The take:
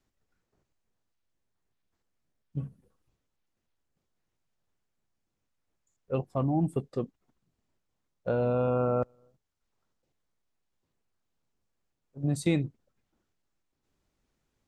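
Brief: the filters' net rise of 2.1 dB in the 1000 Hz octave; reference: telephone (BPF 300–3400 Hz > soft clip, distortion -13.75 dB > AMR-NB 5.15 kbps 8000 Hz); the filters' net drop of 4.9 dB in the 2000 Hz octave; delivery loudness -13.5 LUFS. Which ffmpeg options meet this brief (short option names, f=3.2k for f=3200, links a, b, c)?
-af "highpass=300,lowpass=3.4k,equalizer=f=1k:t=o:g=5.5,equalizer=f=2k:t=o:g=-8.5,asoftclip=threshold=-25.5dB,volume=22dB" -ar 8000 -c:a libopencore_amrnb -b:a 5150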